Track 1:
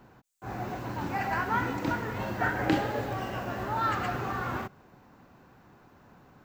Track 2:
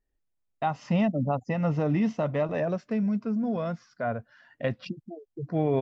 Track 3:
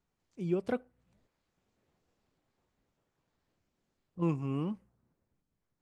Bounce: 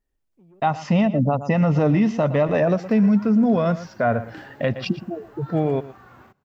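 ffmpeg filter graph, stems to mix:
-filter_complex "[0:a]adelay=1650,volume=0.168[s0];[1:a]dynaudnorm=f=220:g=7:m=3.35,volume=1.26,asplit=2[s1][s2];[s2]volume=0.15[s3];[2:a]lowpass=f=1100:p=1,acompressor=threshold=0.00794:ratio=3,asoftclip=type=tanh:threshold=0.0119,volume=0.355[s4];[s3]aecho=0:1:116:1[s5];[s0][s1][s4][s5]amix=inputs=4:normalize=0,alimiter=limit=0.282:level=0:latency=1:release=175"

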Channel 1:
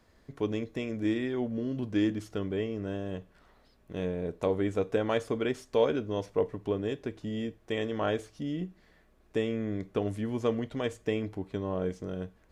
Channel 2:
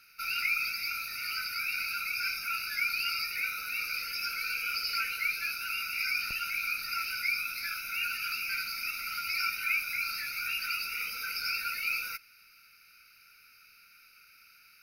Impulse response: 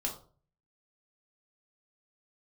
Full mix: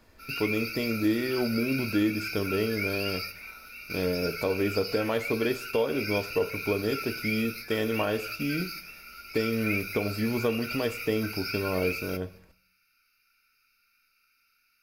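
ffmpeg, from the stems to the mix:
-filter_complex "[0:a]volume=1.19,asplit=3[s0][s1][s2];[s1]volume=0.335[s3];[1:a]volume=0.562,asplit=2[s4][s5];[s5]volume=0.398[s6];[s2]apad=whole_len=653578[s7];[s4][s7]sidechaingate=range=0.0224:threshold=0.00398:ratio=16:detection=peak[s8];[2:a]atrim=start_sample=2205[s9];[s3][s6]amix=inputs=2:normalize=0[s10];[s10][s9]afir=irnorm=-1:irlink=0[s11];[s0][s8][s11]amix=inputs=3:normalize=0,alimiter=limit=0.158:level=0:latency=1:release=276"

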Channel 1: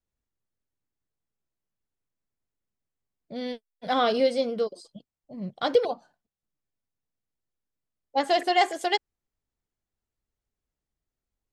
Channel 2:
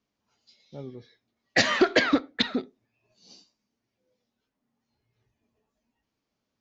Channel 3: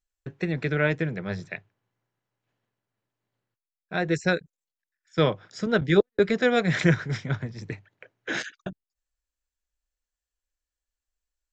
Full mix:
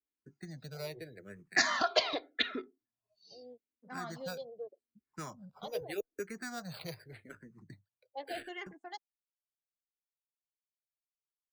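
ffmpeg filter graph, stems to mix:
-filter_complex "[0:a]afwtdn=0.0112,volume=0.158[s0];[1:a]aecho=1:1:2.9:0.48,volume=0.75[s1];[2:a]acrusher=samples=7:mix=1:aa=0.000001,volume=0.2,asplit=2[s2][s3];[s3]apad=whole_len=291369[s4];[s1][s4]sidechaincompress=threshold=0.00631:ratio=8:attack=32:release=130[s5];[s0][s5][s2]amix=inputs=3:normalize=0,afftdn=nr=17:nf=-55,acrossover=split=430|3000[s6][s7][s8];[s6]acompressor=threshold=0.00794:ratio=6[s9];[s9][s7][s8]amix=inputs=3:normalize=0,asplit=2[s10][s11];[s11]afreqshift=-0.83[s12];[s10][s12]amix=inputs=2:normalize=1"

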